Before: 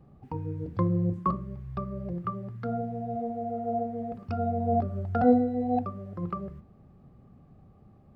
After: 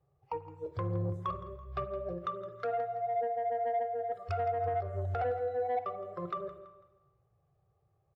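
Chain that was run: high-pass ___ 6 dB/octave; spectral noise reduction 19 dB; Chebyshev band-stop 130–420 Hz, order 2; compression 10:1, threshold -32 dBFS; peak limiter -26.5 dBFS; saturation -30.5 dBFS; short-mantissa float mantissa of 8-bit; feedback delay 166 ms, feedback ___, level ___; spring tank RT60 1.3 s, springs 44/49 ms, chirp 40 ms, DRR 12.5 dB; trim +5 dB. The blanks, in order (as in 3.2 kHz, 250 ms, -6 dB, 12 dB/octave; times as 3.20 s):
88 Hz, 38%, -15.5 dB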